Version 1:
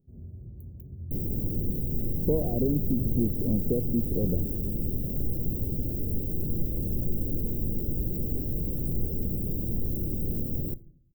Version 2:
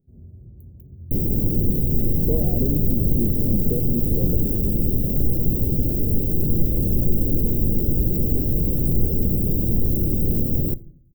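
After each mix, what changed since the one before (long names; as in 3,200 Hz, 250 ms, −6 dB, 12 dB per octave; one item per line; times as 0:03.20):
second sound +9.5 dB
master: add parametric band 8,000 Hz +7 dB 0.51 octaves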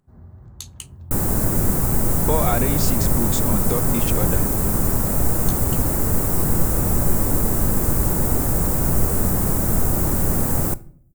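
master: remove inverse Chebyshev band-stop filter 1,400–8,500 Hz, stop band 60 dB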